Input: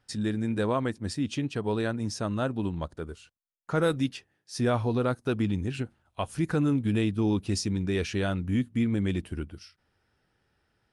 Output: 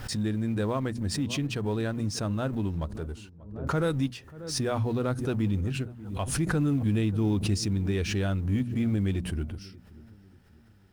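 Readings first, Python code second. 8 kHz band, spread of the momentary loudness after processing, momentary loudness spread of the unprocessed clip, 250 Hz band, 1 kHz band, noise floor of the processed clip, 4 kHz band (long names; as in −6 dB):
+4.0 dB, 10 LU, 12 LU, −0.5 dB, −2.5 dB, −55 dBFS, +1.5 dB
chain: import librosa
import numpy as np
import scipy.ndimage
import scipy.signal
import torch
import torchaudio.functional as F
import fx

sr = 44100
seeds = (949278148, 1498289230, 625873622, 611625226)

y = fx.law_mismatch(x, sr, coded='mu')
y = fx.low_shelf(y, sr, hz=150.0, db=10.0)
y = fx.hum_notches(y, sr, base_hz=60, count=4)
y = fx.echo_filtered(y, sr, ms=588, feedback_pct=42, hz=940.0, wet_db=-20.0)
y = fx.pre_swell(y, sr, db_per_s=68.0)
y = y * librosa.db_to_amplitude(-4.5)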